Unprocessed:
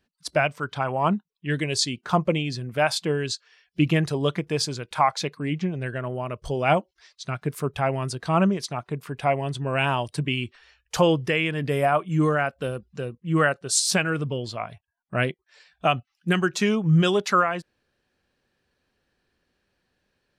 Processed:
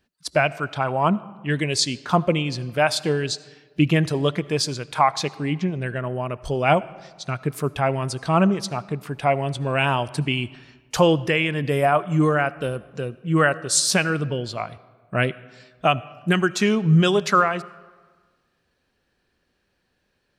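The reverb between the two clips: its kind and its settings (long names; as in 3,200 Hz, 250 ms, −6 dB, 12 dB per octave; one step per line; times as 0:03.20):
comb and all-pass reverb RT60 1.5 s, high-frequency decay 0.6×, pre-delay 35 ms, DRR 19 dB
level +2.5 dB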